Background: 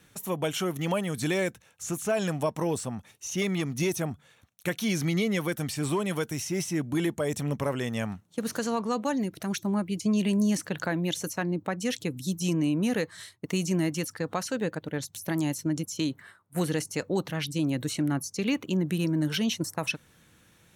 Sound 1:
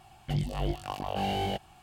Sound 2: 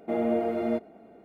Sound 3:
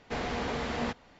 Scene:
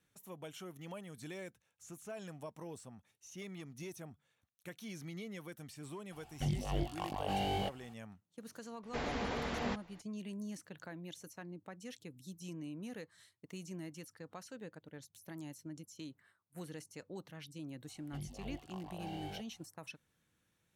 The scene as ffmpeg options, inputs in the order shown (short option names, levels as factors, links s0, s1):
-filter_complex "[1:a]asplit=2[s0][s1];[0:a]volume=0.112[s2];[s0]atrim=end=1.82,asetpts=PTS-STARTPTS,volume=0.562,afade=t=in:d=0.004:c=hsin,afade=t=out:st=1.816:d=0.004:c=hsin,adelay=6120[s3];[3:a]atrim=end=1.19,asetpts=PTS-STARTPTS,volume=0.562,afade=t=in:d=0.004:c=hsin,afade=t=out:st=1.186:d=0.004:c=hsin,adelay=8830[s4];[s1]atrim=end=1.82,asetpts=PTS-STARTPTS,volume=0.158,afade=t=in:d=0.004:c=hsin,afade=t=out:st=1.816:d=0.004:c=hsin,adelay=17840[s5];[s2][s3][s4][s5]amix=inputs=4:normalize=0"